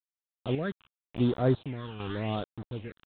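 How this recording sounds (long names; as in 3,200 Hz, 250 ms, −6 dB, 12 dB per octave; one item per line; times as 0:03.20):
a quantiser's noise floor 6 bits, dither none
chopped level 1 Hz, depth 60%, duty 55%
phaser sweep stages 8, 0.88 Hz, lowest notch 570–2,600 Hz
G.726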